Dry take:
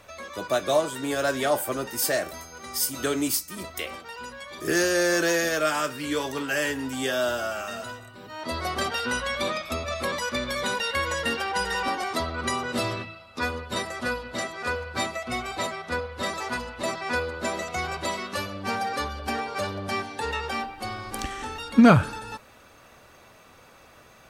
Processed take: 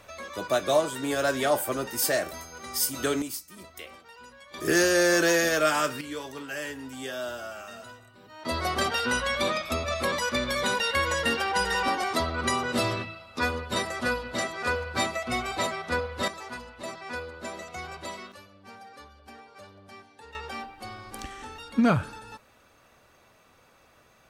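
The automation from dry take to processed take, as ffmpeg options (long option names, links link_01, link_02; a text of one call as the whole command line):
ffmpeg -i in.wav -af "asetnsamples=nb_out_samples=441:pad=0,asendcmd='3.22 volume volume -10dB;4.54 volume volume 1dB;6.01 volume volume -8.5dB;8.45 volume volume 1dB;16.28 volume volume -8.5dB;18.32 volume volume -19dB;20.35 volume volume -7dB',volume=-0.5dB" out.wav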